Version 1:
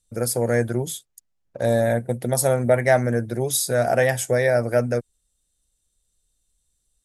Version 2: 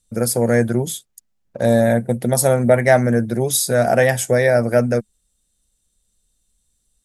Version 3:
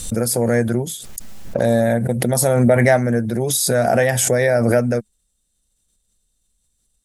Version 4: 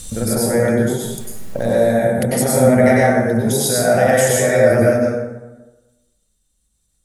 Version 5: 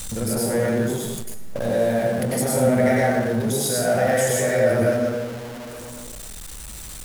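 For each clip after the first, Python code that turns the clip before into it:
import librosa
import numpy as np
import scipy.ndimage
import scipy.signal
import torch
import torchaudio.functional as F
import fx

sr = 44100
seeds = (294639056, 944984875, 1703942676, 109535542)

y1 = fx.peak_eq(x, sr, hz=210.0, db=8.0, octaves=0.34)
y1 = y1 * librosa.db_to_amplitude(4.0)
y2 = fx.pre_swell(y1, sr, db_per_s=27.0)
y2 = y2 * librosa.db_to_amplitude(-2.0)
y3 = fx.rev_plate(y2, sr, seeds[0], rt60_s=1.1, hf_ratio=0.55, predelay_ms=85, drr_db=-5.5)
y3 = y3 * librosa.db_to_amplitude(-4.0)
y4 = y3 + 0.5 * 10.0 ** (-23.0 / 20.0) * np.sign(y3)
y4 = y4 * librosa.db_to_amplitude(-7.0)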